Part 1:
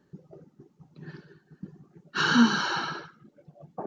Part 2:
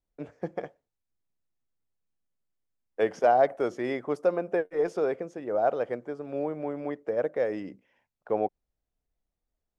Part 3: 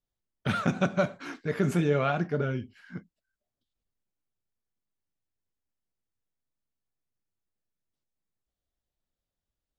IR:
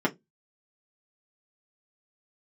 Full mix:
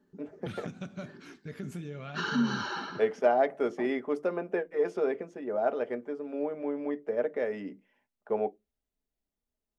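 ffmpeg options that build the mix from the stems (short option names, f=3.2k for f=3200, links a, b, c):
-filter_complex "[0:a]alimiter=limit=-17dB:level=0:latency=1:release=82,volume=-9.5dB,asplit=2[a][b];[b]volume=-15dB[c];[1:a]adynamicequalizer=threshold=0.00447:dfrequency=2600:dqfactor=1.1:tfrequency=2600:tqfactor=1.1:attack=5:release=100:ratio=0.375:range=3:mode=boostabove:tftype=bell,volume=-7.5dB,asplit=2[d][e];[e]volume=-14.5dB[f];[2:a]equalizer=f=860:w=0.51:g=-9,acompressor=threshold=-30dB:ratio=6,volume=-6dB[g];[3:a]atrim=start_sample=2205[h];[c][f]amix=inputs=2:normalize=0[i];[i][h]afir=irnorm=-1:irlink=0[j];[a][d][g][j]amix=inputs=4:normalize=0"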